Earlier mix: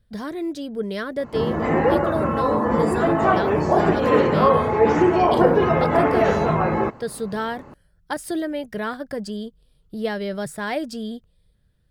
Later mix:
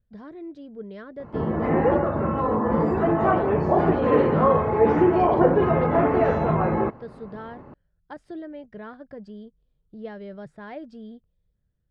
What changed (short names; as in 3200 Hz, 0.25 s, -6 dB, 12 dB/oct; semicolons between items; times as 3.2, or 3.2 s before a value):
speech -9.5 dB; master: add tape spacing loss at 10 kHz 31 dB